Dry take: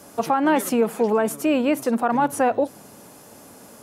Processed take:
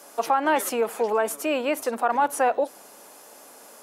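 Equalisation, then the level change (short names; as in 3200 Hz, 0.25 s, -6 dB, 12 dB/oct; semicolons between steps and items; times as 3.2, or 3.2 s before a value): HPF 480 Hz 12 dB/oct; 0.0 dB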